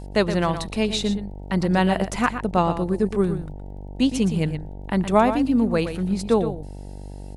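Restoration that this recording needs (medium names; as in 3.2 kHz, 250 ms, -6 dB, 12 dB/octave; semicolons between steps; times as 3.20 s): de-click; de-hum 48.6 Hz, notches 19; inverse comb 118 ms -10 dB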